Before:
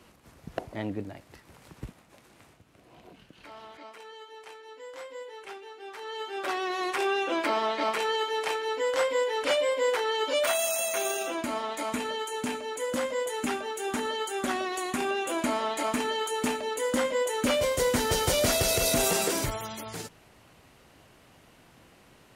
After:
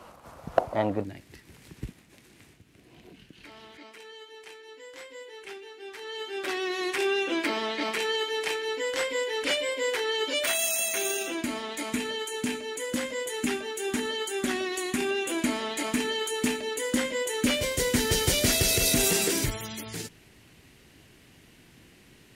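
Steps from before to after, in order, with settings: band shelf 840 Hz +9.5 dB, from 1.03 s -9 dB; gain +3 dB

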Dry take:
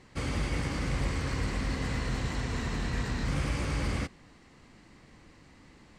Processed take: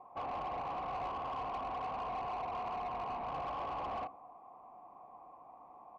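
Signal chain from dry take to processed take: vocal tract filter a; bell 1800 Hz -11 dB 0.86 oct; echo 0.111 s -23.5 dB; on a send at -22 dB: reverb RT60 0.20 s, pre-delay 36 ms; on the sum: overdrive pedal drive 21 dB, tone 2600 Hz, clips at -39 dBFS; gain +7.5 dB

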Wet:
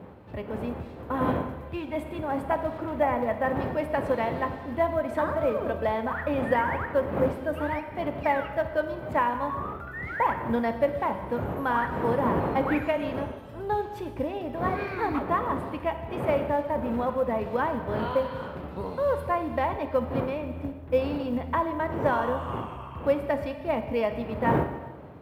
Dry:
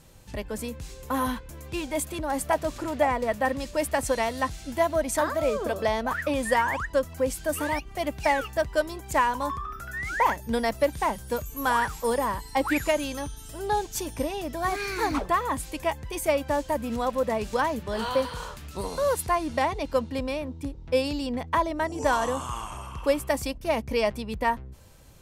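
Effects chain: wind noise 610 Hz -36 dBFS; HPF 66 Hz 24 dB/oct; air absorption 470 m; non-linear reverb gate 0.46 s falling, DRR 7 dB; short-mantissa float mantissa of 6-bit; bell 13000 Hz +8 dB 0.58 oct

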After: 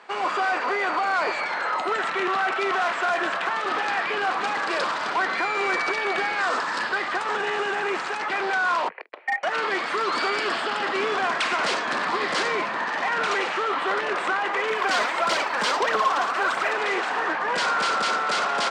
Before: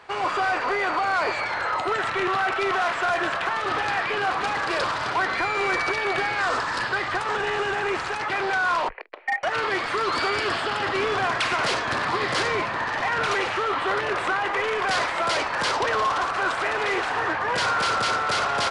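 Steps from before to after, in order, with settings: elliptic band-pass 190–8700 Hz, stop band 40 dB; 14.7–16.74 phaser 1.6 Hz, delay 4.9 ms, feedback 48%

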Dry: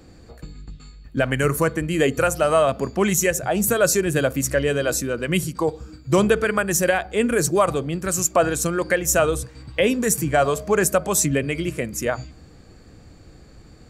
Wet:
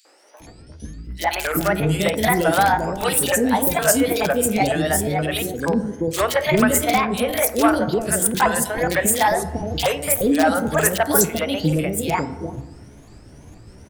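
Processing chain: repeated pitch sweeps +7 st, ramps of 0.467 s; FDN reverb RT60 1.2 s, low-frequency decay 0.95×, high-frequency decay 0.3×, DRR 11.5 dB; in parallel at -5 dB: wrapped overs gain 10 dB; on the sum: three bands offset in time highs, mids, lows 50/400 ms, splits 490/2700 Hz

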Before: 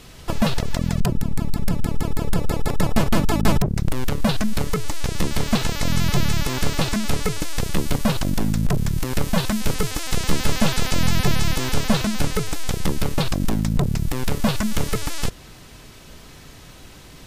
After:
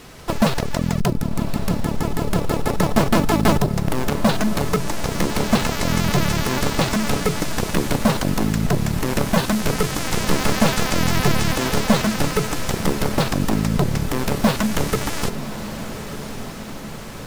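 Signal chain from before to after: low shelf 130 Hz -10 dB; in parallel at -3 dB: sample-rate reducer 4800 Hz, jitter 20%; on the sum: diffused feedback echo 1.155 s, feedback 66%, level -11.5 dB; gain +1 dB

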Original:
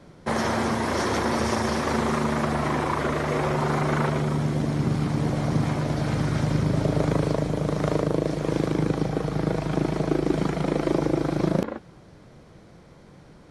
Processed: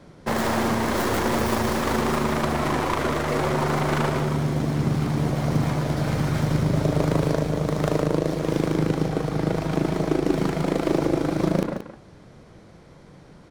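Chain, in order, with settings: tracing distortion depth 0.3 ms; echo 0.177 s -10 dB; gain +1 dB

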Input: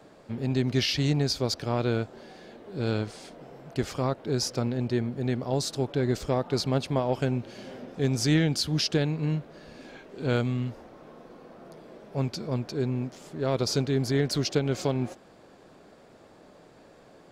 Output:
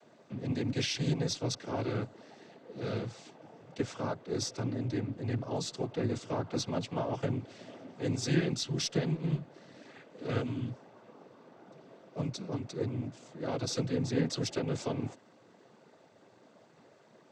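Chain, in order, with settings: noise vocoder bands 16; added harmonics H 6 -34 dB, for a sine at -9.5 dBFS; gain -6 dB

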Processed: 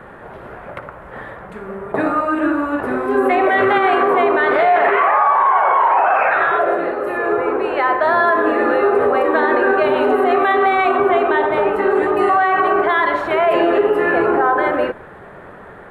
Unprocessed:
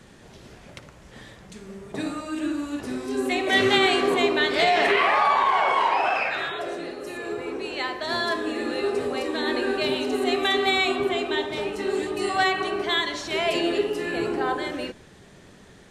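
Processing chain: EQ curve 260 Hz 0 dB, 540 Hz +10 dB, 1400 Hz +13 dB, 5900 Hz -25 dB, 12000 Hz -6 dB; limiter -13 dBFS, peak gain reduction 13.5 dB; gain +6.5 dB

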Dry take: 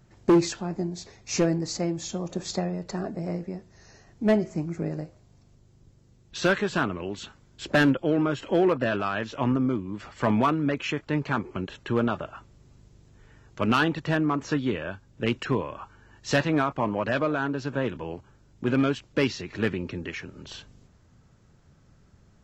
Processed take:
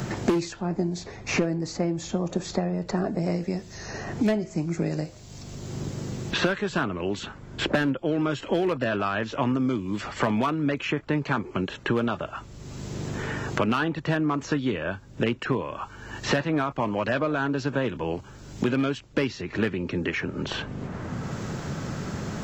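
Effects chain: three-band squash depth 100%

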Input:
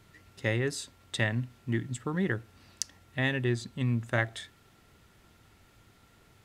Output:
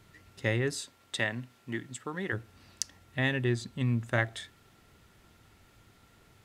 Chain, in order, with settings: 0.79–2.32 HPF 240 Hz -> 550 Hz 6 dB/oct

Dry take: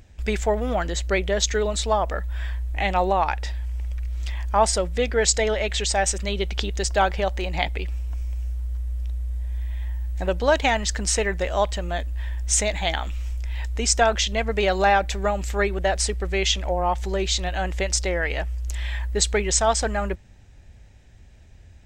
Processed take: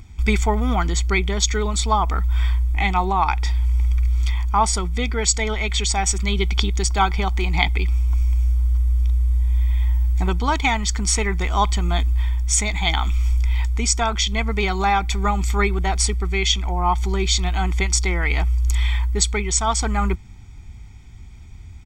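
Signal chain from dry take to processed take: comb 0.9 ms, depth 93%; vocal rider 0.5 s; gain +1 dB

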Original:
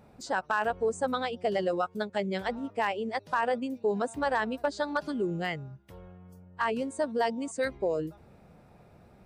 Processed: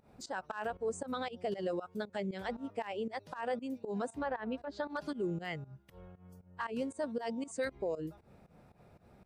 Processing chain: 4.09–4.9 treble ducked by the level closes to 2300 Hz, closed at -25.5 dBFS; limiter -23.5 dBFS, peak gain reduction 6.5 dB; pump 117 bpm, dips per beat 2, -18 dB, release 0.141 s; gain -3.5 dB

